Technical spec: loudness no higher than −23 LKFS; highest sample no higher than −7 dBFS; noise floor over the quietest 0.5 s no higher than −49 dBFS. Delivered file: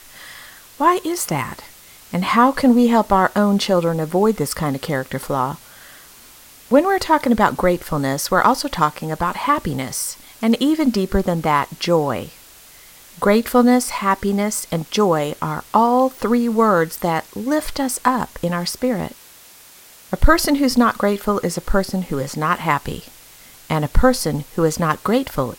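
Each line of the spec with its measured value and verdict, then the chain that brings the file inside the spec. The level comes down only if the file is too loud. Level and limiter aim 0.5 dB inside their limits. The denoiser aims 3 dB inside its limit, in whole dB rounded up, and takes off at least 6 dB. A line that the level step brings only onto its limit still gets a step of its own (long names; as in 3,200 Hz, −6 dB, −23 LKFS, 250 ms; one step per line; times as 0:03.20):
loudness −18.5 LKFS: out of spec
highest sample −1.5 dBFS: out of spec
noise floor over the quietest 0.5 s −45 dBFS: out of spec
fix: level −5 dB
brickwall limiter −7.5 dBFS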